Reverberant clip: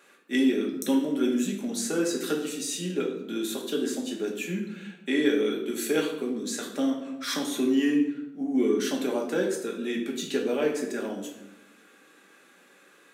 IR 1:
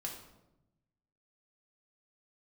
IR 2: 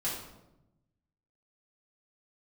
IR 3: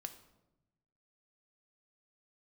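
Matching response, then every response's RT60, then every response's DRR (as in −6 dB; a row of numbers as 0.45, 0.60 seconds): 1; 0.95, 0.95, 0.95 seconds; −1.0, −8.5, 7.5 decibels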